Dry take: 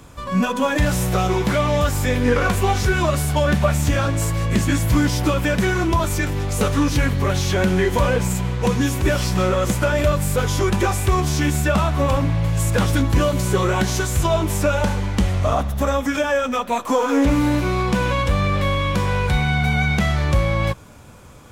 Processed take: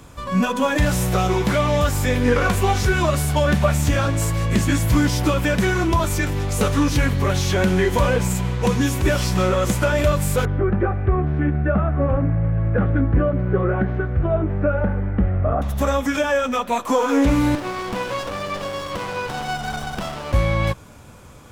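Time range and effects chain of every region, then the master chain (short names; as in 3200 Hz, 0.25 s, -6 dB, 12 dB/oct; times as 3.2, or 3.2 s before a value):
10.45–15.62 LPF 1600 Hz 24 dB/oct + bell 980 Hz -14 dB 0.34 oct
17.55–20.34 weighting filter A + running maximum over 17 samples
whole clip: dry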